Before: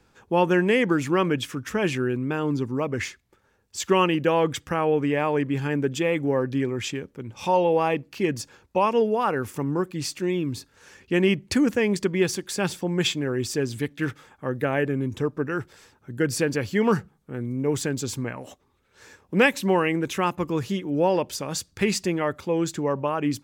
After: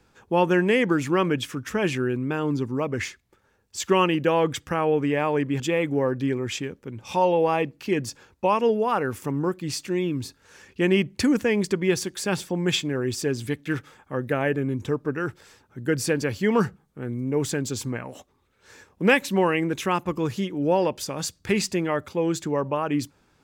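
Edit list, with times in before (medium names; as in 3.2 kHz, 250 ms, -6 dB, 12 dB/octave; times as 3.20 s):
5.60–5.92 s: delete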